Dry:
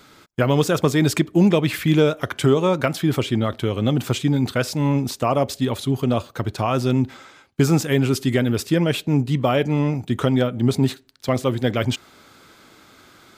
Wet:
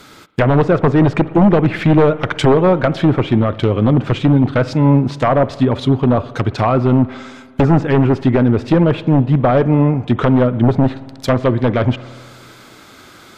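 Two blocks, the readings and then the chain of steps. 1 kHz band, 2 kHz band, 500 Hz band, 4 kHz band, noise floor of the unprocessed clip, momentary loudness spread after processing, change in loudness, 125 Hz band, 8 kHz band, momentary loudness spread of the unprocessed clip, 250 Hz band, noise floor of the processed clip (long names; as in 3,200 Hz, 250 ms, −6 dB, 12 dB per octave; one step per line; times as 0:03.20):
+7.5 dB, +3.5 dB, +6.0 dB, −1.5 dB, −51 dBFS, 5 LU, +6.5 dB, +7.0 dB, can't be measured, 6 LU, +6.5 dB, −42 dBFS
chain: wave folding −12.5 dBFS
treble cut that deepens with the level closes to 1,400 Hz, closed at −17.5 dBFS
spring reverb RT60 1.9 s, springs 56 ms, chirp 80 ms, DRR 16.5 dB
level +8 dB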